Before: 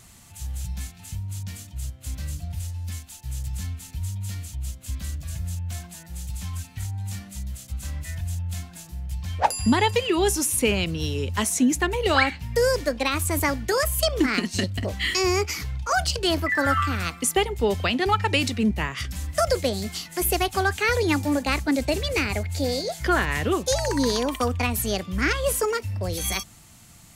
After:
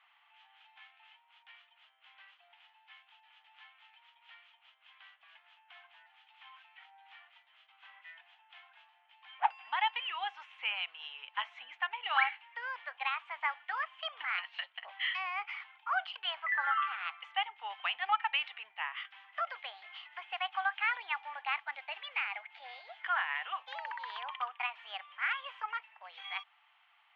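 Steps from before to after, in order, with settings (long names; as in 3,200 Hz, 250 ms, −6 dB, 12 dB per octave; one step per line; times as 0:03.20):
Chebyshev band-pass filter 780–3,200 Hz, order 4
level −7 dB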